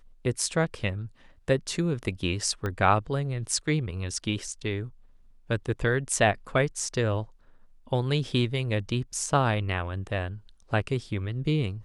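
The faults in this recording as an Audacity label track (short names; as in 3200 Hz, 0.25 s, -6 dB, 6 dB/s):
2.660000	2.660000	pop -18 dBFS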